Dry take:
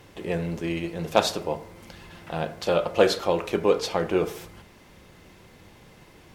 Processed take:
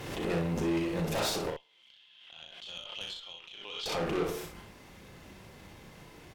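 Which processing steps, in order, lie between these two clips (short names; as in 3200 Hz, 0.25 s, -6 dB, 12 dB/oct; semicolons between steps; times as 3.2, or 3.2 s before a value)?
vocal rider within 3 dB 2 s; 1.5–3.86 band-pass 3200 Hz, Q 9.3; tube stage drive 30 dB, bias 0.5; early reflections 36 ms -5 dB, 63 ms -5.5 dB; backwards sustainer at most 41 dB/s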